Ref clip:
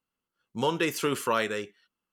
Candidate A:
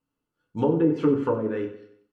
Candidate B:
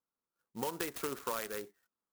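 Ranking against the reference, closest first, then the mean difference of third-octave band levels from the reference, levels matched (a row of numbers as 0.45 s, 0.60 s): B, A; 6.5 dB, 13.0 dB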